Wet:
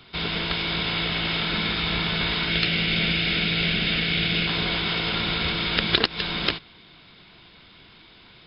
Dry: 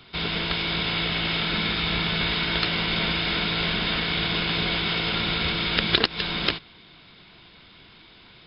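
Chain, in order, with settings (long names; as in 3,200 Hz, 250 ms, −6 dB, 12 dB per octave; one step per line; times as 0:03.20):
0:02.49–0:04.47: graphic EQ with 15 bands 160 Hz +4 dB, 1,000 Hz −11 dB, 2,500 Hz +5 dB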